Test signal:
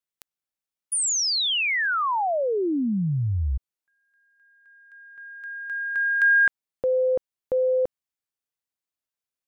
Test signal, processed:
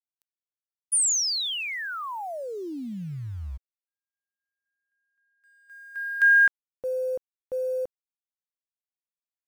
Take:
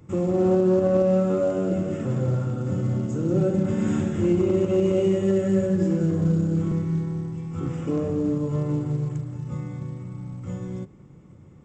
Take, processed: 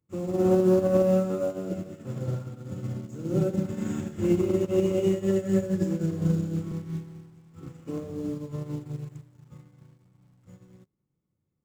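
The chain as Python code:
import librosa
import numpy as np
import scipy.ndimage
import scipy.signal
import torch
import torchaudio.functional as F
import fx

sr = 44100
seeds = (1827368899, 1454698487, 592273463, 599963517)

p1 = fx.high_shelf(x, sr, hz=5100.0, db=6.5)
p2 = fx.quant_dither(p1, sr, seeds[0], bits=6, dither='none')
p3 = p1 + (p2 * 10.0 ** (-8.5 / 20.0))
p4 = fx.upward_expand(p3, sr, threshold_db=-34.0, expansion=2.5)
y = p4 * 10.0 ** (-2.5 / 20.0)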